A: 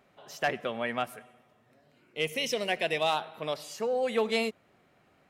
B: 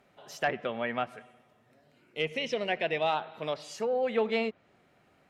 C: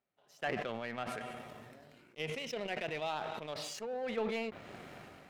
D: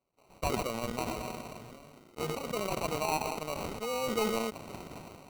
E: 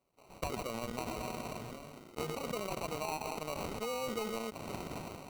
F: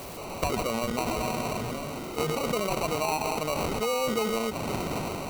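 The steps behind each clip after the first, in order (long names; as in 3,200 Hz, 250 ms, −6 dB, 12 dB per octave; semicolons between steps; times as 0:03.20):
treble cut that deepens with the level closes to 2,800 Hz, closed at −27 dBFS; notch filter 1,100 Hz, Q 26
power curve on the samples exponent 1.4; level that may fall only so fast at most 24 dB per second; level −7 dB
sample-rate reduction 1,700 Hz, jitter 0%; level +5 dB
downward compressor, threshold −38 dBFS, peak gain reduction 12.5 dB; level +3.5 dB
converter with a step at zero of −41 dBFS; level +8 dB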